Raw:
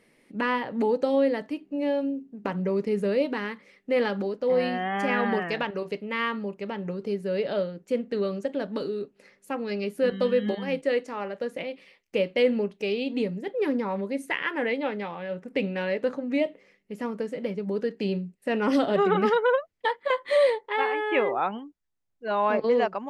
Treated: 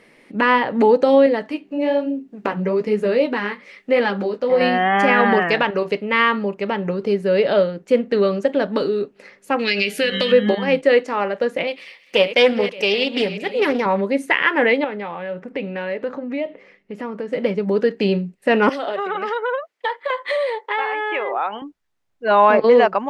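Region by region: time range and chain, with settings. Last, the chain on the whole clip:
1.26–4.61 flange 1.1 Hz, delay 6.5 ms, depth 9.5 ms, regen -37% + mismatched tape noise reduction encoder only
9.59–10.32 resonant high shelf 1600 Hz +13 dB, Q 1.5 + de-hum 88.1 Hz, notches 19 + compressor 12:1, threshold -25 dBFS
11.67–13.86 regenerating reverse delay 0.286 s, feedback 46%, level -14 dB + tilt +2.5 dB/oct + Doppler distortion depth 0.17 ms
14.84–17.33 LPF 3400 Hz 6 dB/oct + compressor 2:1, threshold -39 dBFS
18.69–21.62 compressor, threshold -29 dBFS + HPF 450 Hz
whole clip: LPF 3200 Hz 6 dB/oct; low shelf 430 Hz -7 dB; maximiser +17 dB; gain -3 dB

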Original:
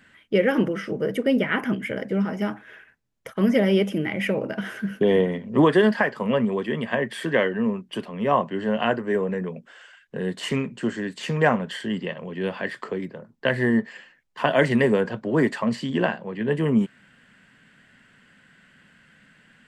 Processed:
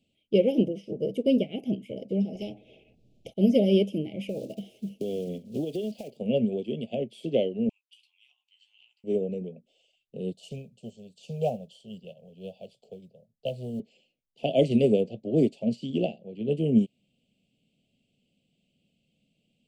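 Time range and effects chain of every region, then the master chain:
2.35–3.34 LPF 1300 Hz 6 dB/oct + upward compressor, threshold -48 dBFS + spectral compressor 2:1
4.29–6.19 block floating point 5-bit + compressor, threshold -22 dBFS
7.69–9.04 steep high-pass 950 Hz 96 dB/oct + compressor 10:1, threshold -36 dBFS + doubler 15 ms -7 dB
10.32–13.8 fixed phaser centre 760 Hz, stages 4 + modulation noise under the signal 32 dB
whole clip: inverse Chebyshev band-stop 950–1900 Hz, stop band 40 dB; high shelf 7900 Hz -7.5 dB; upward expander 1.5:1, over -41 dBFS

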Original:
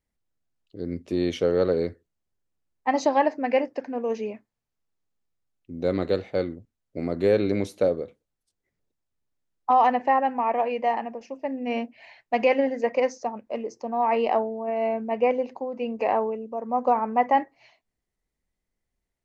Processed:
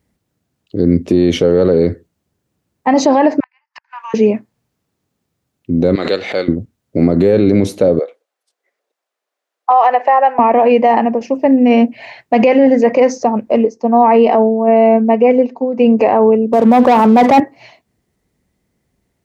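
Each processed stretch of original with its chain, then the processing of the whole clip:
3.4–4.14 Chebyshev high-pass 930 Hz, order 6 + flipped gate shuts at -34 dBFS, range -39 dB + air absorption 75 m
5.95–6.48 band-pass 3600 Hz, Q 0.53 + backwards sustainer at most 76 dB/s
7.99–10.39 HPF 550 Hz 24 dB/oct + high shelf 4100 Hz -8.5 dB + notch 900 Hz, Q 15
13.65–15.78 comb 4.4 ms, depth 59% + upward expander, over -38 dBFS
16.53–17.4 Chebyshev high-pass 200 Hz + sample leveller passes 3
whole clip: HPF 100 Hz; low shelf 450 Hz +10.5 dB; maximiser +15.5 dB; gain -1 dB

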